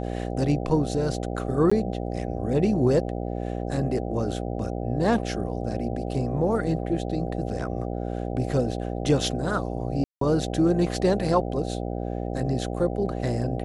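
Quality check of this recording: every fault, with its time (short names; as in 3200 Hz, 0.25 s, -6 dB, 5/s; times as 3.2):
buzz 60 Hz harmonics 13 -30 dBFS
1.7–1.72 gap 15 ms
10.04–10.21 gap 0.173 s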